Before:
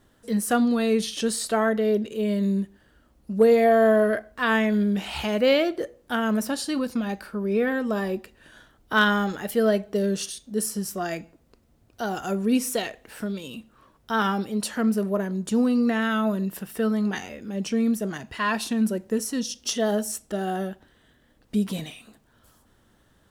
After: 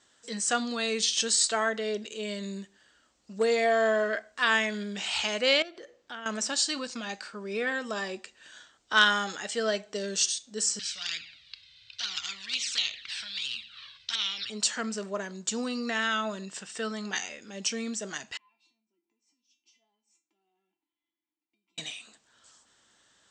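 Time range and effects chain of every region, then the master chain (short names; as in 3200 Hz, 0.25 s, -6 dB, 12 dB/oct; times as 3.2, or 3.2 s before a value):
5.62–6.26 compressor 4:1, threshold -34 dBFS + air absorption 91 m + decimation joined by straight lines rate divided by 2×
10.79–14.5 EQ curve 110 Hz 0 dB, 210 Hz -18 dB, 380 Hz -28 dB, 810 Hz -29 dB, 1300 Hz -13 dB, 2200 Hz 0 dB, 3900 Hz +8 dB, 7300 Hz -26 dB, 11000 Hz -17 dB + envelope flanger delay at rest 2.1 ms, full sweep at -30.5 dBFS + spectral compressor 2:1
18.37–21.78 vowel filter u + compressor 8:1, threshold -52 dBFS + resonator 340 Hz, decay 0.26 s, mix 90%
whole clip: steep low-pass 8200 Hz 96 dB/oct; tilt +4.5 dB/oct; gain -3.5 dB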